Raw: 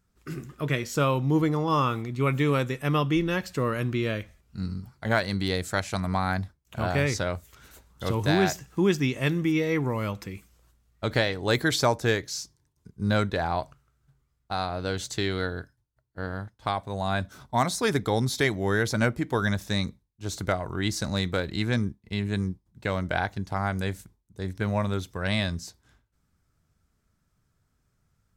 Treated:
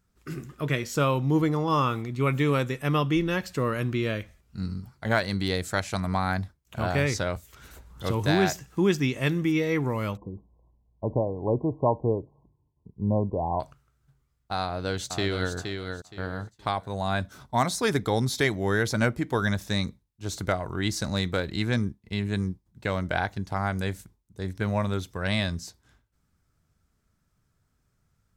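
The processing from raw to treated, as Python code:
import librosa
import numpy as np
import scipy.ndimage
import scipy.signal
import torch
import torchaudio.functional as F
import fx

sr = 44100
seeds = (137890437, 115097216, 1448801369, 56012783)

y = fx.band_squash(x, sr, depth_pct=100, at=(7.36, 8.04))
y = fx.brickwall_lowpass(y, sr, high_hz=1100.0, at=(10.17, 13.6))
y = fx.echo_throw(y, sr, start_s=14.63, length_s=0.91, ms=470, feedback_pct=25, wet_db=-6.0)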